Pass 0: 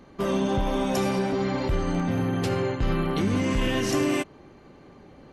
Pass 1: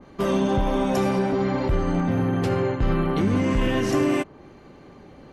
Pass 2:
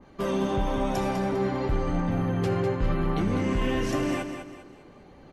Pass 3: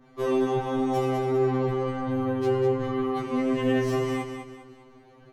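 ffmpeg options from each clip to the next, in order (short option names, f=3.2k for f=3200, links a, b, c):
-af "adynamicequalizer=threshold=0.00562:dfrequency=2300:dqfactor=0.7:tfrequency=2300:tqfactor=0.7:attack=5:release=100:ratio=0.375:range=3.5:mode=cutabove:tftype=highshelf,volume=3dB"
-af "flanger=delay=1:depth=1.9:regen=73:speed=0.97:shape=triangular,aecho=1:1:201|402|603|804:0.398|0.147|0.0545|0.0202"
-filter_complex "[0:a]acrossover=split=2000[a][b];[b]asoftclip=type=hard:threshold=-38.5dB[c];[a][c]amix=inputs=2:normalize=0,afftfilt=real='re*2.45*eq(mod(b,6),0)':imag='im*2.45*eq(mod(b,6),0)':win_size=2048:overlap=0.75"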